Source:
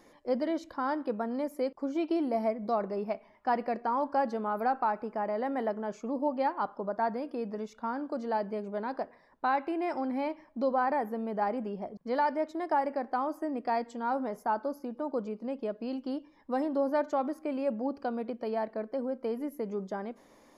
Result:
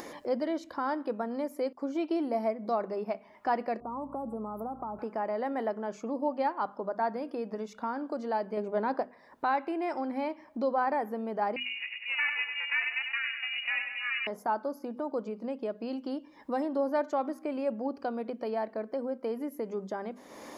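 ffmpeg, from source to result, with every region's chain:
-filter_complex "[0:a]asettb=1/sr,asplit=3[s0][s1][s2];[s0]atrim=end=3.804[s3];[s1]atrim=start=3.8:end=4.99,asetpts=PTS-STARTPTS,afade=t=in:d=0.004:c=qsin,afade=t=out:st=1.186:d=0.004:c=qsin,acrossover=split=280|3000[s4][s5][s6];[s5]acompressor=threshold=0.00891:ratio=3:attack=3.2:release=140:knee=2.83:detection=peak[s7];[s4][s7][s6]amix=inputs=3:normalize=0,asuperstop=centerf=3400:order=20:qfactor=0.5,aeval=exprs='val(0)+0.00251*(sin(2*PI*60*n/s)+sin(2*PI*2*60*n/s)/2+sin(2*PI*3*60*n/s)/3+sin(2*PI*4*60*n/s)/4+sin(2*PI*5*60*n/s)/5)':c=same[s8];[s2]atrim=start=4.986[s9];[s3][s8]acrossfade=d=0.004:c1=hsin:c2=qsin[s10];[s10][s9]acrossfade=d=0.004:c1=qsin:c2=hsin,asettb=1/sr,asplit=3[s11][s12][s13];[s11]atrim=end=8.574[s14];[s12]atrim=start=8.57:end=9.01,asetpts=PTS-STARTPTS,afade=t=in:d=0.004:c=qsin,afade=t=out:st=0.436:d=0.004:c=qsin,lowpass=f=1700:p=1,aemphasis=mode=production:type=cd,acontrast=55[s15];[s13]atrim=start=9.006[s16];[s14][s15]acrossfade=d=0.004:c1=hsin:c2=qsin[s17];[s17][s16]acrossfade=d=0.004:c1=qsin:c2=hsin,asettb=1/sr,asplit=3[s18][s19][s20];[s18]atrim=end=11.564[s21];[s19]atrim=start=11.56:end=14.27,asetpts=PTS-STARTPTS,afade=t=in:d=0.004:c=qsin,afade=t=out:st=2.706:d=0.004:c=qsin,aeval=exprs='val(0)*sin(2*PI*260*n/s)':c=same,aecho=1:1:98|196|294|392|490|588|686:0.447|0.241|0.13|0.0703|0.038|0.0205|0.0111,atrim=end_sample=119511,lowpass=f=2500:t=q:w=0.5098,lowpass=f=2500:t=q:w=0.6013,lowpass=f=2500:t=q:w=0.9,lowpass=f=2500:t=q:w=2.563,afreqshift=-2900[s22];[s20]atrim=start=14.266[s23];[s21][s22]acrossfade=d=0.004:c1=hsin:c2=qsin[s24];[s24][s23]acrossfade=d=0.004:c1=qsin:c2=hsin,highpass=f=150:p=1,bandreject=f=50:t=h:w=6,bandreject=f=100:t=h:w=6,bandreject=f=150:t=h:w=6,bandreject=f=200:t=h:w=6,bandreject=f=250:t=h:w=6,acompressor=mode=upward:threshold=0.0282:ratio=2.5"

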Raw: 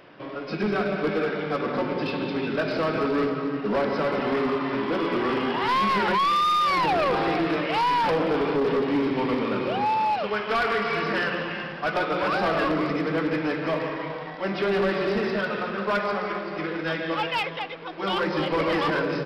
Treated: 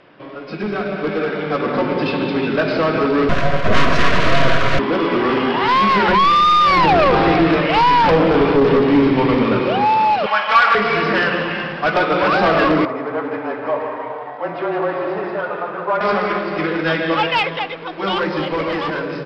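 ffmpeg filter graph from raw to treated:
-filter_complex "[0:a]asettb=1/sr,asplit=3[s0][s1][s2];[s0]atrim=end=3.294[s3];[s1]atrim=start=3.29:end=4.79,asetpts=PTS-STARTPTS,afade=t=in:d=0.004:c=qsin,afade=t=out:st=1.496:d=0.004:c=qsin,acontrast=80,aeval=exprs='abs(val(0))':c=same,asuperstop=centerf=840:order=12:qfactor=4.7[s4];[s2]atrim=start=4.786[s5];[s3][s4]acrossfade=d=0.004:c1=hsin:c2=qsin[s6];[s6][s5]acrossfade=d=0.004:c1=qsin:c2=hsin,asettb=1/sr,asplit=3[s7][s8][s9];[s7]atrim=end=6.084[s10];[s8]atrim=start=6.08:end=9.6,asetpts=PTS-STARTPTS,afade=t=in:d=0.004:c=qsin,afade=t=out:st=3.516:d=0.004:c=qsin,lowshelf=f=140:g=10.5,bandreject=f=50:t=h:w=6,bandreject=f=100:t=h:w=6,bandreject=f=150:t=h:w=6,bandreject=f=200:t=h:w=6,bandreject=f=250:t=h:w=6,bandreject=f=300:t=h:w=6,bandreject=f=350:t=h:w=6,bandreject=f=400:t=h:w=6,bandreject=f=450:t=h:w=6,bandreject=f=500:t=h:w=6[s11];[s9]atrim=start=9.596[s12];[s10][s11]acrossfade=d=0.004:c1=hsin:c2=qsin[s13];[s13][s12]acrossfade=d=0.004:c1=qsin:c2=hsin,asettb=1/sr,asplit=3[s14][s15][s16];[s14]atrim=end=10.264[s17];[s15]atrim=start=10.26:end=10.75,asetpts=PTS-STARTPTS,afade=t=in:d=0.004:c=qsin,afade=t=out:st=0.486:d=0.004:c=qsin,lowshelf=f=490:t=q:w=1.5:g=-13.5,aecho=1:1:3.6:0.76,atrim=end_sample=21609[s18];[s16]atrim=start=10.746[s19];[s17][s18]acrossfade=d=0.004:c1=hsin:c2=qsin[s20];[s20][s19]acrossfade=d=0.004:c1=qsin:c2=hsin,asettb=1/sr,asplit=3[s21][s22][s23];[s21]atrim=end=12.854[s24];[s22]atrim=start=12.85:end=16.01,asetpts=PTS-STARTPTS,afade=t=in:d=0.004:c=qsin,afade=t=out:st=3.156:d=0.004:c=qsin,bandpass=f=810:t=q:w=1.5,afreqshift=-26[s25];[s23]atrim=start=16.006[s26];[s24][s25]acrossfade=d=0.004:c1=hsin:c2=qsin[s27];[s27][s26]acrossfade=d=0.004:c1=qsin:c2=hsin,lowpass=5400,dynaudnorm=f=170:g=17:m=2.51,volume=1.19"

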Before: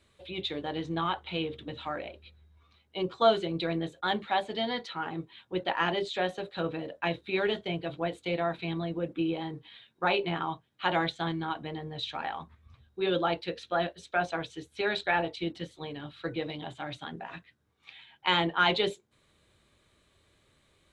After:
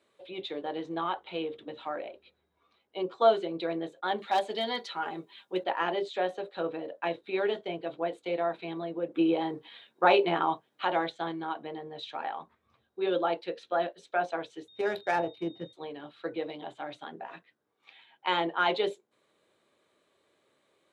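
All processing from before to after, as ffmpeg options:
-filter_complex "[0:a]asettb=1/sr,asplit=3[s0][s1][s2];[s0]atrim=end=4.184[s3];[s1]atrim=start=4.18:end=5.64,asetpts=PTS-STARTPTS,afade=t=in:d=0.004:c=qsin,afade=t=out:st=1.456:d=0.004:c=qsin,highshelf=f=3200:g=11.5,aecho=1:1:5:0.32,atrim=end_sample=64386,asoftclip=type=hard:threshold=0.112[s4];[s2]atrim=start=5.636[s5];[s3][s4]acrossfade=d=0.004:c1=hsin:c2=qsin[s6];[s6][s5]acrossfade=d=0.004:c1=qsin:c2=hsin,asettb=1/sr,asplit=3[s7][s8][s9];[s7]atrim=end=9.144[s10];[s8]atrim=start=9.14:end=10.85,asetpts=PTS-STARTPTS,afade=t=in:d=0.004:c=qsin,afade=t=out:st=1.706:d=0.004:c=qsin,highshelf=f=6100:g=3,acontrast=59[s11];[s9]atrim=start=10.846[s12];[s10][s11]acrossfade=d=0.004:c1=hsin:c2=qsin[s13];[s13][s12]acrossfade=d=0.004:c1=qsin:c2=hsin,asettb=1/sr,asplit=3[s14][s15][s16];[s14]atrim=end=14.684[s17];[s15]atrim=start=14.68:end=15.73,asetpts=PTS-STARTPTS,afade=t=in:d=0.004:c=qsin,afade=t=out:st=1.046:d=0.004:c=qsin,equalizer=f=110:w=1.3:g=14.5,adynamicsmooth=sensitivity=2.5:basefreq=1400,aeval=exprs='val(0)+0.00398*sin(2*PI*3700*n/s)':c=same[s18];[s16]atrim=start=15.726[s19];[s17][s18]acrossfade=d=0.004:c1=hsin:c2=qsin[s20];[s20][s19]acrossfade=d=0.004:c1=qsin:c2=hsin,highpass=460,tiltshelf=f=930:g=7"

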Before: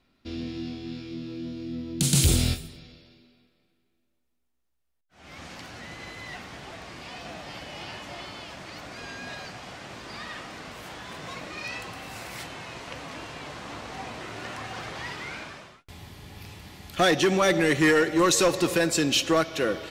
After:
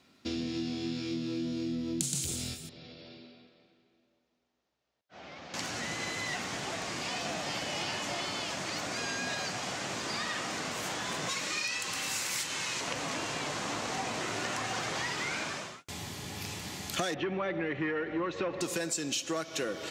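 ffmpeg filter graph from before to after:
-filter_complex "[0:a]asettb=1/sr,asplit=3[s0][s1][s2];[s0]atrim=end=2.694[s3];[s1]atrim=start=2.69:end=5.54,asetpts=PTS-STARTPTS,afade=t=in:d=0.004:c=qsin,afade=t=out:st=2.846:d=0.004:c=qsin,lowpass=f=4800:w=0.5412,lowpass=f=4800:w=1.3066,equalizer=f=600:w=1.2:g=6.5,acompressor=threshold=0.00316:ratio=4:attack=3.2:release=140:knee=1:detection=peak[s4];[s2]atrim=start=5.536[s5];[s3][s4]acrossfade=d=0.004:c1=hsin:c2=qsin[s6];[s6][s5]acrossfade=d=0.004:c1=qsin:c2=hsin,asettb=1/sr,asplit=3[s7][s8][s9];[s7]atrim=end=11.294[s10];[s8]atrim=start=11.29:end=12.81,asetpts=PTS-STARTPTS,afade=t=in:d=0.004:c=qsin,afade=t=out:st=1.516:d=0.004:c=qsin,tiltshelf=f=1400:g=-5,bandreject=f=700:w=6.4[s11];[s9]atrim=start=12.806[s12];[s10][s11]acrossfade=d=0.004:c1=hsin:c2=qsin[s13];[s13][s12]acrossfade=d=0.004:c1=qsin:c2=hsin,asettb=1/sr,asplit=3[s14][s15][s16];[s14]atrim=end=17.144[s17];[s15]atrim=start=17.14:end=18.61,asetpts=PTS-STARTPTS,afade=t=in:d=0.004:c=qsin,afade=t=out:st=1.466:d=0.004:c=qsin,aeval=exprs='val(0)+0.5*0.0158*sgn(val(0))':c=same,lowpass=f=2700:w=0.5412,lowpass=f=2700:w=1.3066,aeval=exprs='val(0)+0.0126*(sin(2*PI*50*n/s)+sin(2*PI*2*50*n/s)/2+sin(2*PI*3*50*n/s)/3+sin(2*PI*4*50*n/s)/4+sin(2*PI*5*50*n/s)/5)':c=same[s18];[s16]atrim=start=18.606[s19];[s17][s18]acrossfade=d=0.004:c1=hsin:c2=qsin[s20];[s20][s19]acrossfade=d=0.004:c1=qsin:c2=hsin,equalizer=f=6900:t=o:w=0.85:g=9,acompressor=threshold=0.0178:ratio=16,highpass=120,volume=1.78"

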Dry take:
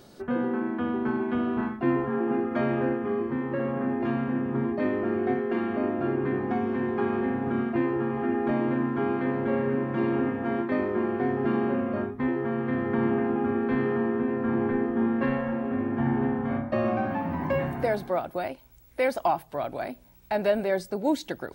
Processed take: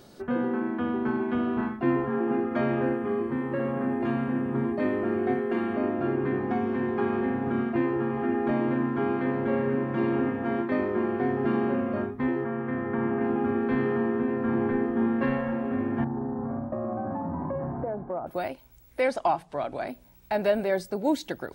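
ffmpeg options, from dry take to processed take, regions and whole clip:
-filter_complex "[0:a]asettb=1/sr,asplit=3[s0][s1][s2];[s0]atrim=end=2.854[s3];[s1]atrim=start=2.85:end=5.74,asetpts=PTS-STARTPTS,afade=t=in:d=0.004:c=qsin,afade=t=out:st=2.886:d=0.004:c=qsin,equalizer=f=8800:t=o:w=0.36:g=12.5,bandreject=f=5500:w=9.4[s4];[s2]atrim=start=5.736[s5];[s3][s4]acrossfade=d=0.004:c1=hsin:c2=qsin[s6];[s6][s5]acrossfade=d=0.004:c1=qsin:c2=hsin,asettb=1/sr,asplit=3[s7][s8][s9];[s7]atrim=end=12.444[s10];[s8]atrim=start=12.44:end=13.21,asetpts=PTS-STARTPTS,afade=t=in:d=0.004:c=qsin,afade=t=out:st=0.766:d=0.004:c=qsin,lowpass=1900,tiltshelf=f=1300:g=-3[s11];[s9]atrim=start=13.206[s12];[s10][s11]acrossfade=d=0.004:c1=hsin:c2=qsin[s13];[s13][s12]acrossfade=d=0.004:c1=qsin:c2=hsin,asettb=1/sr,asplit=3[s14][s15][s16];[s14]atrim=end=16.044[s17];[s15]atrim=start=16.04:end=18.27,asetpts=PTS-STARTPTS,afade=t=in:d=0.004:c=qsin,afade=t=out:st=2.226:d=0.004:c=qsin,lowpass=f=1200:w=0.5412,lowpass=f=1200:w=1.3066,acompressor=threshold=0.0447:ratio=5:attack=3.2:release=140:knee=1:detection=peak[s18];[s16]atrim=start=18.266[s19];[s17][s18]acrossfade=d=0.004:c1=hsin:c2=qsin[s20];[s20][s19]acrossfade=d=0.004:c1=qsin:c2=hsin,asettb=1/sr,asplit=3[s21][s22][s23];[s21]atrim=end=19.004[s24];[s22]atrim=start=19:end=19.88,asetpts=PTS-STARTPTS,afade=t=in:d=0.004:c=qsin,afade=t=out:st=0.876:d=0.004:c=qsin,lowpass=f=9400:w=0.5412,lowpass=f=9400:w=1.3066,bandreject=f=60:t=h:w=6,bandreject=f=120:t=h:w=6,bandreject=f=180:t=h:w=6[s25];[s23]atrim=start=19.876[s26];[s24][s25]acrossfade=d=0.004:c1=hsin:c2=qsin[s27];[s27][s26]acrossfade=d=0.004:c1=qsin:c2=hsin"

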